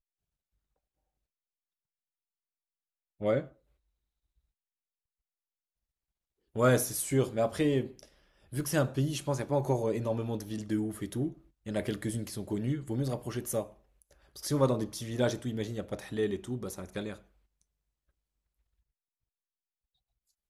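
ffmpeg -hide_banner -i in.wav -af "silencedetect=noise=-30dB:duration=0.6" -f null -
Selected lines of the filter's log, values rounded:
silence_start: 0.00
silence_end: 3.22 | silence_duration: 3.22
silence_start: 3.40
silence_end: 6.57 | silence_duration: 3.17
silence_start: 7.84
silence_end: 8.56 | silence_duration: 0.72
silence_start: 13.62
silence_end: 14.45 | silence_duration: 0.82
silence_start: 17.10
silence_end: 20.49 | silence_duration: 3.40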